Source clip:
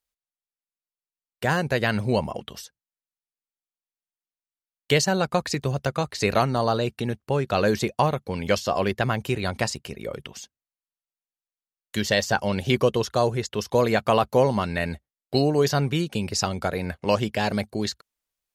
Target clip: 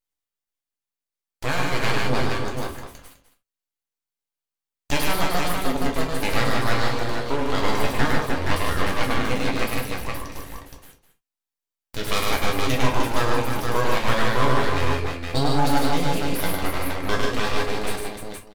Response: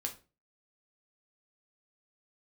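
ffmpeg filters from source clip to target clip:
-filter_complex "[0:a]aeval=exprs='abs(val(0))':c=same,aecho=1:1:103|149|303|470|674:0.668|0.562|0.501|0.596|0.133[s0];[1:a]atrim=start_sample=2205,atrim=end_sample=3969[s1];[s0][s1]afir=irnorm=-1:irlink=0"

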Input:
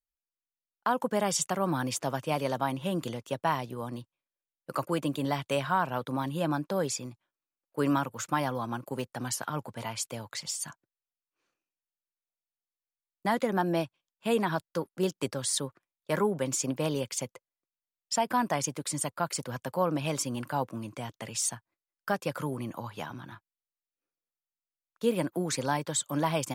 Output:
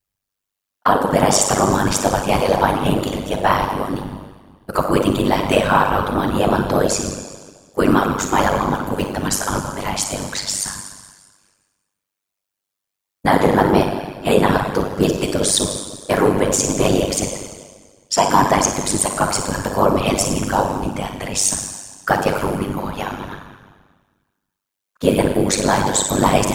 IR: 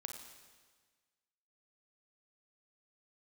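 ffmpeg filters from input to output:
-filter_complex "[1:a]atrim=start_sample=2205[s0];[0:a][s0]afir=irnorm=-1:irlink=0,afftfilt=real='hypot(re,im)*cos(2*PI*random(0))':imag='hypot(re,im)*sin(2*PI*random(1))':win_size=512:overlap=0.75,apsyclip=22.4,tremolo=f=98:d=0.71,volume=0.841"

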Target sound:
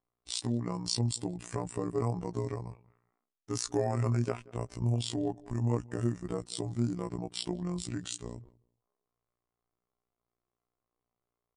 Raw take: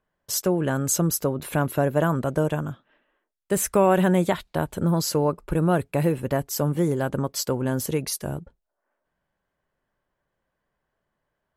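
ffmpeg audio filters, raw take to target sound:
-filter_complex "[0:a]asplit=2[s0][s1];[s1]adelay=185,lowpass=f=2300:p=1,volume=0.0794,asplit=2[s2][s3];[s3]adelay=185,lowpass=f=2300:p=1,volume=0.18[s4];[s0][s2][s4]amix=inputs=3:normalize=0,afftfilt=real='hypot(re,im)*cos(PI*b)':imag='0':win_size=2048:overlap=0.75,asetrate=30296,aresample=44100,atempo=1.45565,volume=0.473"

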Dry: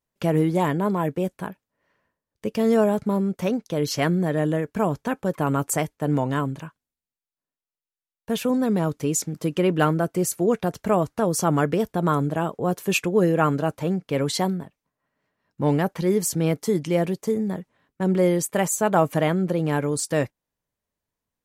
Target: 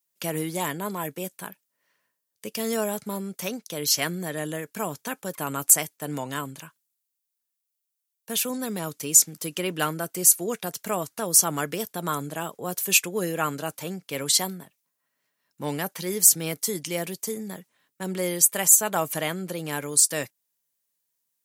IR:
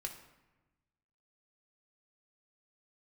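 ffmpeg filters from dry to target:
-filter_complex "[0:a]acrossover=split=100|5300[s0][s1][s2];[s0]acrusher=bits=4:mix=0:aa=0.000001[s3];[s3][s1][s2]amix=inputs=3:normalize=0,crystalizer=i=9.5:c=0,volume=0.316"

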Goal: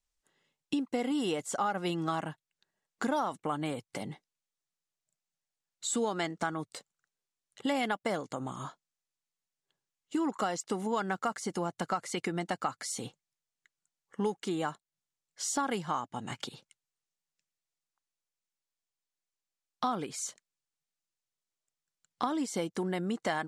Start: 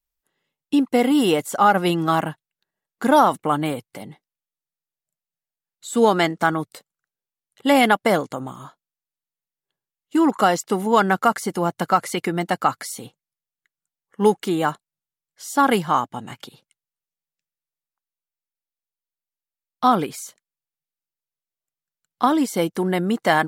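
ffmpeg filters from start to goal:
-af "acompressor=threshold=0.02:ratio=3,lowpass=f=7500:t=q:w=1.5"

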